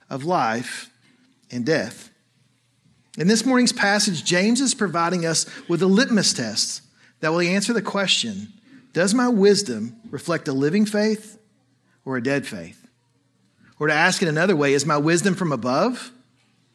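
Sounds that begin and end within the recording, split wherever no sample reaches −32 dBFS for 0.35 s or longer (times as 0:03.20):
0:01.51–0:02.02
0:03.14–0:06.77
0:07.23–0:08.46
0:08.95–0:11.25
0:12.07–0:12.69
0:13.81–0:16.07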